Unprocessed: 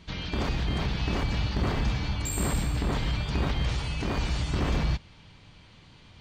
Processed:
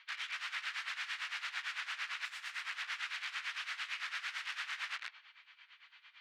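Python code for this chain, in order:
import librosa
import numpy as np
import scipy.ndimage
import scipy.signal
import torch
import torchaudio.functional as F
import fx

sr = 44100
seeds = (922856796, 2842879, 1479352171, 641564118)

y = fx.echo_feedback(x, sr, ms=144, feedback_pct=38, wet_db=-11.0)
y = (np.mod(10.0 ** (31.0 / 20.0) * y + 1.0, 2.0) - 1.0) / 10.0 ** (31.0 / 20.0)
y = scipy.signal.sosfilt(scipy.signal.butter(4, 1500.0, 'highpass', fs=sr, output='sos'), y)
y = y * (1.0 - 0.8 / 2.0 + 0.8 / 2.0 * np.cos(2.0 * np.pi * 8.9 * (np.arange(len(y)) / sr)))
y = scipy.signal.sosfilt(scipy.signal.butter(2, 2100.0, 'lowpass', fs=sr, output='sos'), y)
y = F.gain(torch.from_numpy(y), 7.5).numpy()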